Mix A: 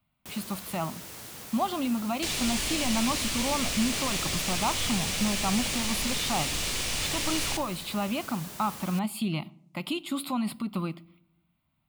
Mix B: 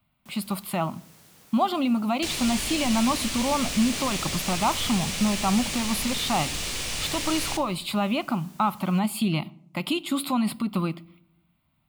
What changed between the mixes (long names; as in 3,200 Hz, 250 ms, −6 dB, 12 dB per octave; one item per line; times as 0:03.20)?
speech +5.0 dB
first sound −11.5 dB